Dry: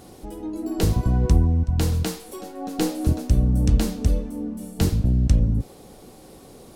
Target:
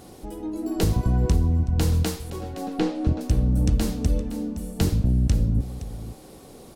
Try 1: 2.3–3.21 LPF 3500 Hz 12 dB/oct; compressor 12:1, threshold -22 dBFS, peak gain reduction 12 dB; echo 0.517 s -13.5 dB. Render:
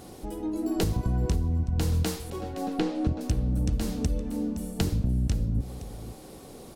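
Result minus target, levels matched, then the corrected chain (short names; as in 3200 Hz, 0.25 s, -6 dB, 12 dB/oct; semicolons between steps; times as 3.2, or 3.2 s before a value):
compressor: peak gain reduction +6.5 dB
2.3–3.21 LPF 3500 Hz 12 dB/oct; compressor 12:1, threshold -15 dBFS, peak gain reduction 5.5 dB; echo 0.517 s -13.5 dB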